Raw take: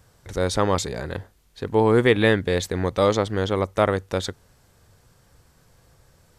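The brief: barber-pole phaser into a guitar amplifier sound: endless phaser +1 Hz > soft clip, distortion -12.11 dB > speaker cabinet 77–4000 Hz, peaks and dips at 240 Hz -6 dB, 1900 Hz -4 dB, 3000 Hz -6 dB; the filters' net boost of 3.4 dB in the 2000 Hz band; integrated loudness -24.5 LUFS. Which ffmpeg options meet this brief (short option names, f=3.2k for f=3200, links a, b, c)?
-filter_complex "[0:a]equalizer=f=2k:t=o:g=7.5,asplit=2[a][b];[b]afreqshift=1[c];[a][c]amix=inputs=2:normalize=1,asoftclip=threshold=-15dB,highpass=77,equalizer=f=240:t=q:w=4:g=-6,equalizer=f=1.9k:t=q:w=4:g=-4,equalizer=f=3k:t=q:w=4:g=-6,lowpass=f=4k:w=0.5412,lowpass=f=4k:w=1.3066,volume=3dB"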